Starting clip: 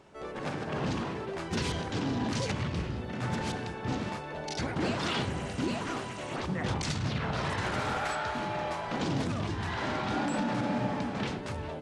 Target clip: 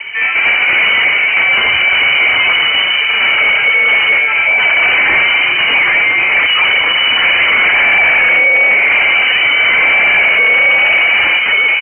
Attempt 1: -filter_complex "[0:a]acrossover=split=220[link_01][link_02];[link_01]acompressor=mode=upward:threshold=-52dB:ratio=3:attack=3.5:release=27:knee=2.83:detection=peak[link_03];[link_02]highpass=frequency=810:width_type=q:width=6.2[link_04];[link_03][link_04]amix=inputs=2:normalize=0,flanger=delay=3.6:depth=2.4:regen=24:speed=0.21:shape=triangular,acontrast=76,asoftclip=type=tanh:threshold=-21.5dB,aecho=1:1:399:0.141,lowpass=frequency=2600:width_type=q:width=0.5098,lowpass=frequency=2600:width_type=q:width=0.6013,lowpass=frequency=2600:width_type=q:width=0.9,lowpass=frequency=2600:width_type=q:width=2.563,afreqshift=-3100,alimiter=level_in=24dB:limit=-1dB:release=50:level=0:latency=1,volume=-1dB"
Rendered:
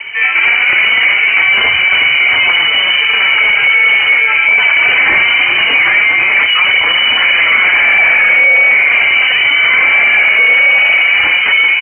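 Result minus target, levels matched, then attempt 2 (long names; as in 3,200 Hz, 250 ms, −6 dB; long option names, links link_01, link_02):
soft clipping: distortion −6 dB
-filter_complex "[0:a]acrossover=split=220[link_01][link_02];[link_01]acompressor=mode=upward:threshold=-52dB:ratio=3:attack=3.5:release=27:knee=2.83:detection=peak[link_03];[link_02]highpass=frequency=810:width_type=q:width=6.2[link_04];[link_03][link_04]amix=inputs=2:normalize=0,flanger=delay=3.6:depth=2.4:regen=24:speed=0.21:shape=triangular,acontrast=76,asoftclip=type=tanh:threshold=-31dB,aecho=1:1:399:0.141,lowpass=frequency=2600:width_type=q:width=0.5098,lowpass=frequency=2600:width_type=q:width=0.6013,lowpass=frequency=2600:width_type=q:width=0.9,lowpass=frequency=2600:width_type=q:width=2.563,afreqshift=-3100,alimiter=level_in=24dB:limit=-1dB:release=50:level=0:latency=1,volume=-1dB"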